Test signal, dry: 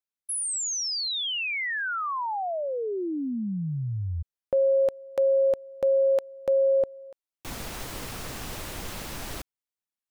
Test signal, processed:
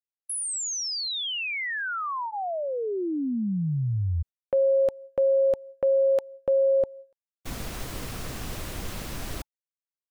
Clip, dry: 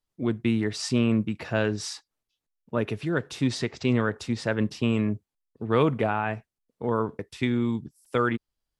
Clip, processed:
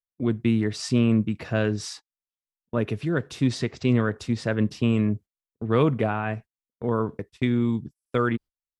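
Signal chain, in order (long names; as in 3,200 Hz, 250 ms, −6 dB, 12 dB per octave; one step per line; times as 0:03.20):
noise gate −41 dBFS, range −26 dB
low-shelf EQ 300 Hz +5.5 dB
notch filter 870 Hz, Q 16
level −1 dB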